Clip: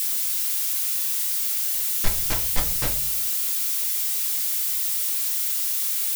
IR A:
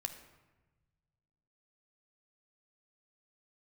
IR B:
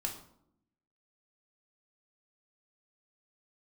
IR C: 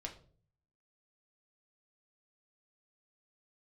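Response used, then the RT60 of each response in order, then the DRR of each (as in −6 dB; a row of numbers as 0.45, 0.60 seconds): C; 1.2, 0.75, 0.45 seconds; 7.0, 1.0, 1.0 decibels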